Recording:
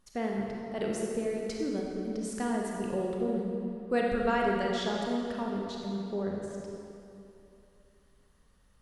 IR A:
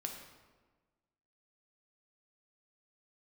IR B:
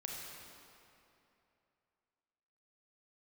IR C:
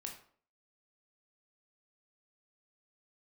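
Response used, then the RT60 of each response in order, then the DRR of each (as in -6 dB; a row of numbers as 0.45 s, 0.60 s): B; 1.4 s, 2.9 s, 0.50 s; 1.5 dB, -2.0 dB, 1.5 dB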